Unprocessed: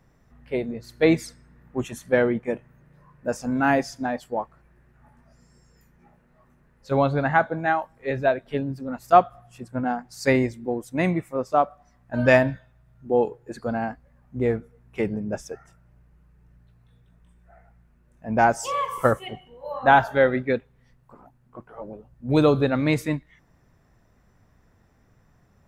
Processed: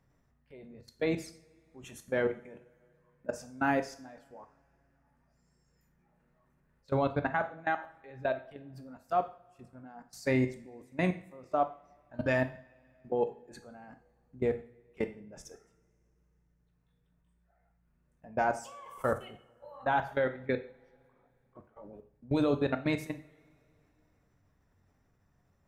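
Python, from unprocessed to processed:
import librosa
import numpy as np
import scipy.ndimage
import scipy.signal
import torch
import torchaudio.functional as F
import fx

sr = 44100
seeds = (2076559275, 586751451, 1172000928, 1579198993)

y = fx.level_steps(x, sr, step_db=22)
y = fx.rev_double_slope(y, sr, seeds[0], early_s=0.45, late_s=3.0, knee_db=-27, drr_db=7.5)
y = y * 10.0 ** (-5.5 / 20.0)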